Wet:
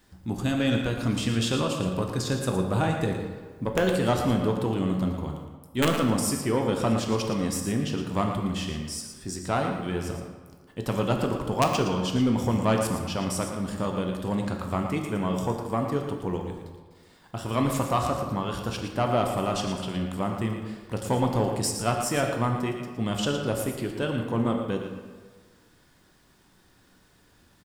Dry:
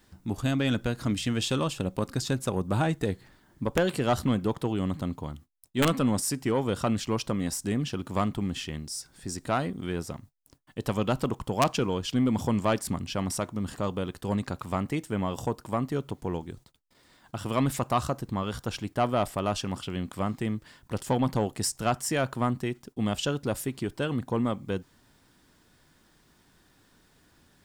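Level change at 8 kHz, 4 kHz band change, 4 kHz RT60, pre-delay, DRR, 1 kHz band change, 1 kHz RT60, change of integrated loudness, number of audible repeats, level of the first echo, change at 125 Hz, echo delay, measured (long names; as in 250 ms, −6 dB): +1.5 dB, +2.0 dB, 0.95 s, 9 ms, 1.5 dB, +2.5 dB, 1.5 s, +2.0 dB, 1, −9.0 dB, +2.0 dB, 114 ms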